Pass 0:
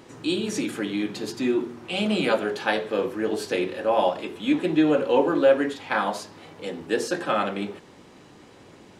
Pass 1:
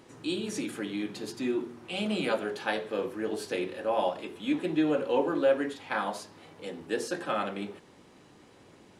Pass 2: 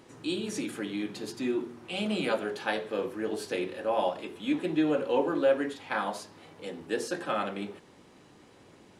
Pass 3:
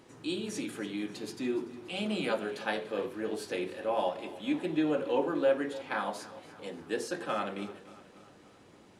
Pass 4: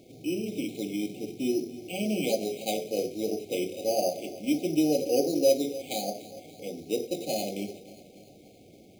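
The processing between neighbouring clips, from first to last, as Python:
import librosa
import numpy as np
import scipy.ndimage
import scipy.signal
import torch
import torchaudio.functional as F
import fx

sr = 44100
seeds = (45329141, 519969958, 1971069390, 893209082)

y1 = fx.peak_eq(x, sr, hz=10000.0, db=4.5, octaves=0.34)
y1 = y1 * librosa.db_to_amplitude(-6.5)
y2 = y1
y3 = fx.echo_feedback(y2, sr, ms=290, feedback_pct=57, wet_db=-17.5)
y3 = y3 * librosa.db_to_amplitude(-2.5)
y4 = np.repeat(scipy.signal.resample_poly(y3, 1, 8), 8)[:len(y3)]
y4 = fx.brickwall_bandstop(y4, sr, low_hz=790.0, high_hz=2100.0)
y4 = y4 * librosa.db_to_amplitude(4.5)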